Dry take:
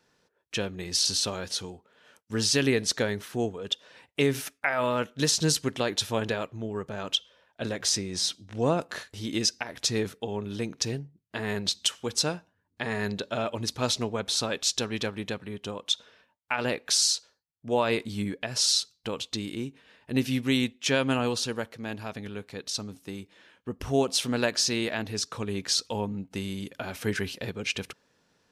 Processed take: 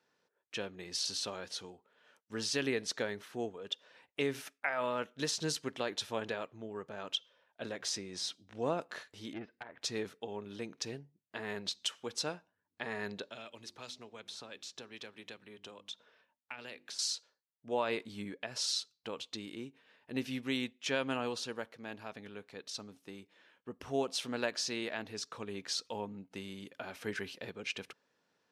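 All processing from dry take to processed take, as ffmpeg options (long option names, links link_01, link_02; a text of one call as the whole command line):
ffmpeg -i in.wav -filter_complex "[0:a]asettb=1/sr,asplit=3[link_01][link_02][link_03];[link_01]atrim=end=9.334[link_04];[link_02]atrim=start=9.33:end=9.82,asetpts=PTS-STARTPTS,afade=type=in:duration=0.004:curve=qsin,afade=type=out:start_time=0.486:duration=0.004:curve=qsin,deesser=0.7,lowpass=frequency=2300:width=0.5412,lowpass=frequency=2300:width=1.3066,aeval=exprs='(tanh(15.8*val(0)+0.65)-tanh(0.65))/15.8':channel_layout=same[link_05];[link_03]atrim=start=9.816[link_06];[link_04][link_05]acrossfade=duration=0.004:curve1=hsin:curve2=qsin[link_07];[link_07][link_06]acrossfade=duration=0.004:curve1=qsin:curve2=hsin,asettb=1/sr,asplit=3[link_08][link_09][link_10];[link_08]atrim=end=13.244[link_11];[link_09]atrim=start=13.24:end=16.99,asetpts=PTS-STARTPTS,afade=type=in:duration=0.004:curve=qsin,afade=type=out:start_time=3.746:duration=0.004:curve=qsin,bandreject=frequency=50:width_type=h:width=6,bandreject=frequency=100:width_type=h:width=6,bandreject=frequency=150:width_type=h:width=6,bandreject=frequency=200:width_type=h:width=6,bandreject=frequency=250:width_type=h:width=6,bandreject=frequency=300:width_type=h:width=6,bandreject=frequency=350:width_type=h:width=6,acrossover=split=350|2100[link_12][link_13][link_14];[link_12]acompressor=threshold=-45dB:ratio=4[link_15];[link_13]acompressor=threshold=-45dB:ratio=4[link_16];[link_14]acompressor=threshold=-37dB:ratio=4[link_17];[link_15][link_16][link_17]amix=inputs=3:normalize=0[link_18];[link_10]atrim=start=16.986[link_19];[link_11][link_18]acrossfade=duration=0.004:curve1=hsin:curve2=qsin[link_20];[link_20][link_19]acrossfade=duration=0.004:curve1=qsin:curve2=hsin,highpass=frequency=330:poles=1,highshelf=frequency=5600:gain=-9,volume=-6.5dB" out.wav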